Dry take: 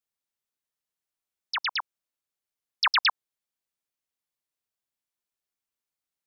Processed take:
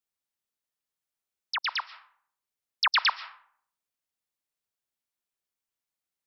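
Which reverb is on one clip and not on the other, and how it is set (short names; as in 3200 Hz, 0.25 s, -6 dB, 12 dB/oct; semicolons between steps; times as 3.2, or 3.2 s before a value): digital reverb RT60 0.61 s, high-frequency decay 0.55×, pre-delay 95 ms, DRR 16 dB; gain -1 dB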